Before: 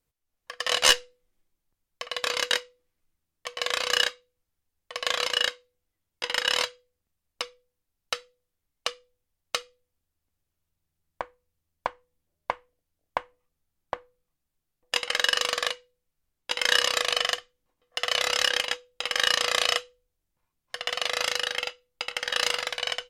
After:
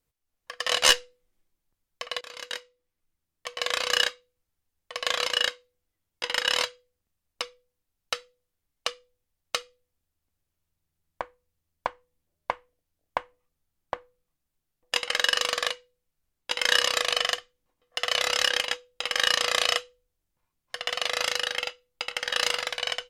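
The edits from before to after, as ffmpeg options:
-filter_complex "[0:a]asplit=2[a][b];[a]atrim=end=2.21,asetpts=PTS-STARTPTS,afade=t=out:st=2.206:d=0.004:c=hsin:silence=0.112202[c];[b]atrim=start=2.21,asetpts=PTS-STARTPTS,afade=t=in:d=1.34:silence=0.112202[d];[c][d]concat=n=2:v=0:a=1"

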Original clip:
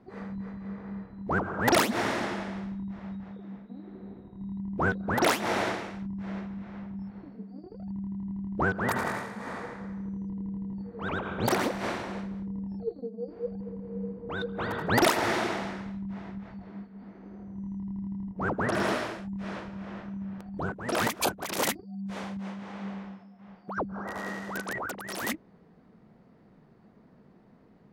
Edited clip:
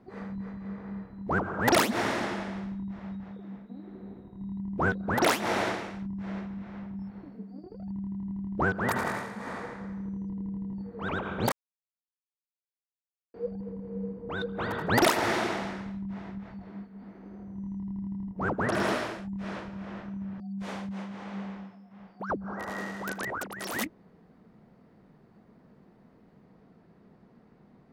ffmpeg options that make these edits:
-filter_complex "[0:a]asplit=4[a][b][c][d];[a]atrim=end=11.52,asetpts=PTS-STARTPTS,afade=t=out:st=11.516:d=0.004:c=hsin[e];[b]atrim=start=11.52:end=13.34,asetpts=PTS-STARTPTS,volume=0[f];[c]atrim=start=13.34:end=20.402,asetpts=PTS-STARTPTS,afade=t=in:d=0.004:c=hsin[g];[d]atrim=start=21.878[h];[e][f][g]concat=n=3:v=0:a=1[i];[i][h]acrossfade=d=0.004:c1=hsin:c2=hsin"

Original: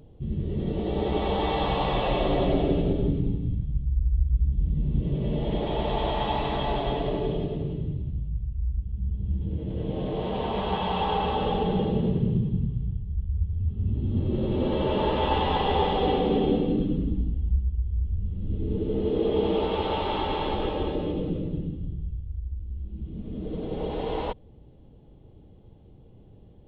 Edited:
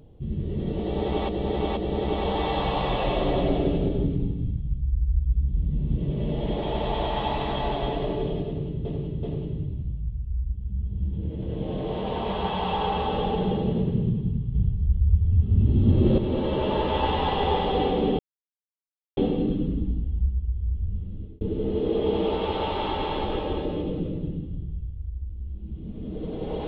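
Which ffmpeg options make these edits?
-filter_complex "[0:a]asplit=9[a][b][c][d][e][f][g][h][i];[a]atrim=end=1.292[j];[b]atrim=start=0.808:end=1.292[k];[c]atrim=start=0.808:end=7.892[l];[d]atrim=start=7.508:end=7.892[m];[e]atrim=start=7.508:end=12.832[n];[f]atrim=start=12.828:end=14.462,asetpts=PTS-STARTPTS,volume=7dB[o];[g]atrim=start=14.458:end=16.47,asetpts=PTS-STARTPTS,afade=t=out:st=2.008:d=0.004:c=hsin,apad=pad_dur=0.98[p];[h]atrim=start=16.47:end=18.71,asetpts=PTS-STARTPTS,afade=t=in:d=0.004:c=hsin,afade=t=out:st=1.79:d=0.45[q];[i]atrim=start=18.71,asetpts=PTS-STARTPTS,afade=t=in:d=0.004:c=hsin[r];[j][k]acrossfade=d=0.004:c1=hsin:c2=hsin[s];[s][l]acrossfade=d=0.004:c1=hsin:c2=hsin[t];[t][m]acrossfade=d=0.004:c1=hsin:c2=hsin[u];[u][n]acrossfade=d=0.004:c1=hsin:c2=hsin[v];[v][o]acrossfade=d=0.004:c1=hsin:c2=hsin[w];[p][q][r]concat=n=3:v=0:a=1[x];[w][x]acrossfade=d=0.004:c1=hsin:c2=hsin"

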